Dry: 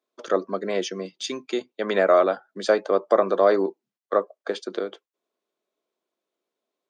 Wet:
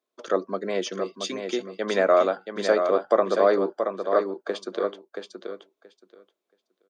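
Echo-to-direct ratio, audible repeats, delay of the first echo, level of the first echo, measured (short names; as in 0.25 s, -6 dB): -6.5 dB, 2, 0.677 s, -6.5 dB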